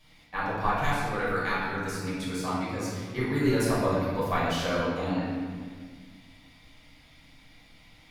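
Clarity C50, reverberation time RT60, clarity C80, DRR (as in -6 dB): -2.0 dB, 1.7 s, 0.5 dB, -9.5 dB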